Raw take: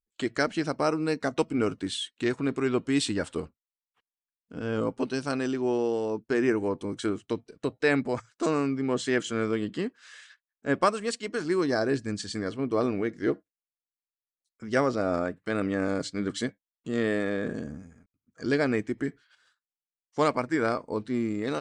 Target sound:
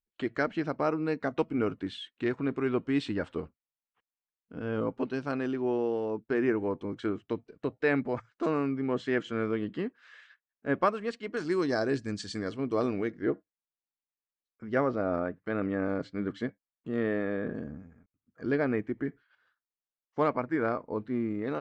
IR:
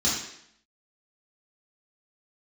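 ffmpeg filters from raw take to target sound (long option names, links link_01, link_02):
-af "asetnsamples=nb_out_samples=441:pad=0,asendcmd='11.37 lowpass f 6800;13.12 lowpass f 2000',lowpass=2600,volume=-2.5dB"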